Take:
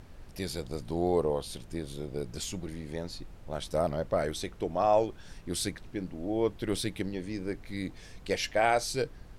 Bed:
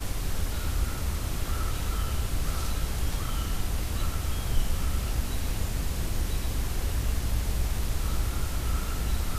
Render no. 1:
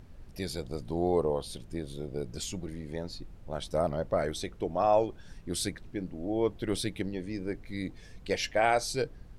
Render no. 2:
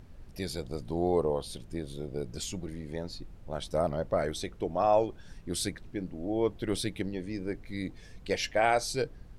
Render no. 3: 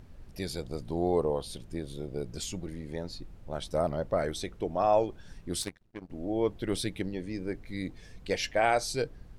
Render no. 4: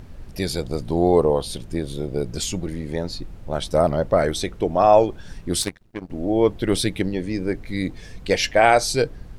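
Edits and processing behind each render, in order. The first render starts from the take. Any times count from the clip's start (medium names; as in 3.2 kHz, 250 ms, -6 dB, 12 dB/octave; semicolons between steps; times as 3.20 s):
noise reduction 6 dB, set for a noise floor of -50 dBFS
no audible change
5.62–6.10 s: power-law waveshaper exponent 2
trim +10.5 dB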